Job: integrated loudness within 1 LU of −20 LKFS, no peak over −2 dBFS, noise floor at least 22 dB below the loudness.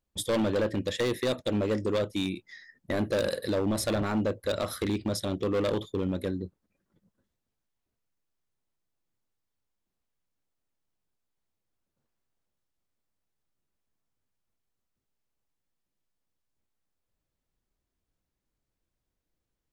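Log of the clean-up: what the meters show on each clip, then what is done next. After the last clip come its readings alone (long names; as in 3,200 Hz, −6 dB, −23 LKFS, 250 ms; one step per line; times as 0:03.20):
share of clipped samples 1.7%; peaks flattened at −22.5 dBFS; integrated loudness −29.5 LKFS; sample peak −22.5 dBFS; target loudness −20.0 LKFS
→ clipped peaks rebuilt −22.5 dBFS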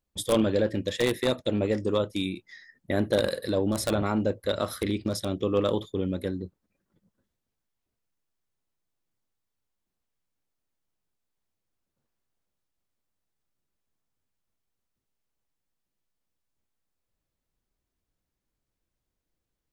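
share of clipped samples 0.0%; integrated loudness −27.5 LKFS; sample peak −13.5 dBFS; target loudness −20.0 LKFS
→ level +7.5 dB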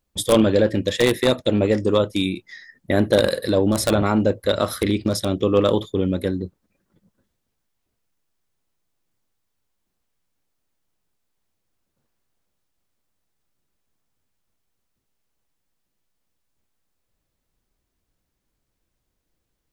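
integrated loudness −20.0 LKFS; sample peak −6.0 dBFS; background noise floor −77 dBFS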